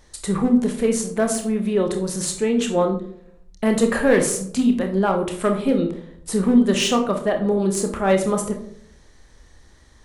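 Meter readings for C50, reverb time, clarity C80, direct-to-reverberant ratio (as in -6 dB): 9.0 dB, 0.65 s, 12.5 dB, 4.0 dB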